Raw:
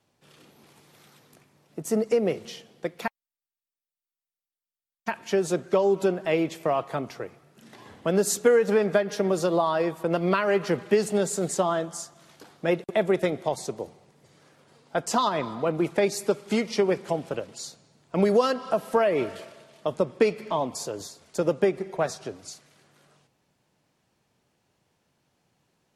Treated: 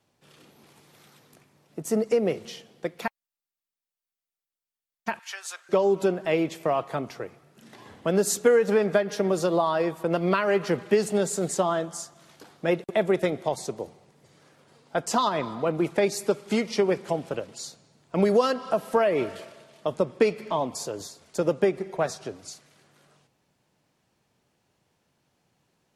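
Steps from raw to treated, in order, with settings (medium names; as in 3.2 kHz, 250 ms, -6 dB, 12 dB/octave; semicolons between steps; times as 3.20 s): 5.19–5.69 s: high-pass 1.1 kHz 24 dB/octave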